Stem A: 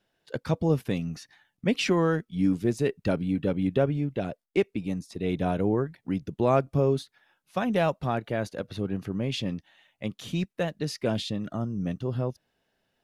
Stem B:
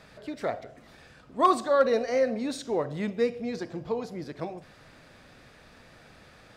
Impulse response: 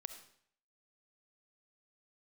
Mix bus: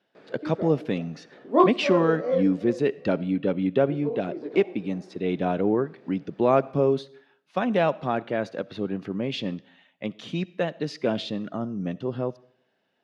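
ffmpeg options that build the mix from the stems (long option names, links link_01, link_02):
-filter_complex "[0:a]volume=0dB,asplit=3[link_01][link_02][link_03];[link_02]volume=-6.5dB[link_04];[1:a]equalizer=frequency=380:width_type=o:width=1.7:gain=14.5,flanger=delay=16:depth=7.6:speed=2.8,adelay=150,volume=-2.5dB,asplit=3[link_05][link_06][link_07];[link_05]atrim=end=2.43,asetpts=PTS-STARTPTS,afade=type=out:start_time=2.426:duration=0.004:curve=hsin[link_08];[link_06]atrim=start=2.43:end=3.82,asetpts=PTS-STARTPTS,volume=0[link_09];[link_07]atrim=start=3.82,asetpts=PTS-STARTPTS,afade=type=in:duration=0.004:curve=hsin[link_10];[link_08][link_09][link_10]concat=n=3:v=0:a=1,asplit=3[link_11][link_12][link_13];[link_12]volume=-9.5dB[link_14];[link_13]volume=-20dB[link_15];[link_03]apad=whole_len=296283[link_16];[link_11][link_16]sidechaincompress=threshold=-42dB:ratio=8:attack=30:release=289[link_17];[2:a]atrim=start_sample=2205[link_18];[link_04][link_14]amix=inputs=2:normalize=0[link_19];[link_19][link_18]afir=irnorm=-1:irlink=0[link_20];[link_15]aecho=0:1:368|736|1104|1472:1|0.25|0.0625|0.0156[link_21];[link_01][link_17][link_20][link_21]amix=inputs=4:normalize=0,highpass=220,lowpass=4100,lowshelf=frequency=390:gain=3"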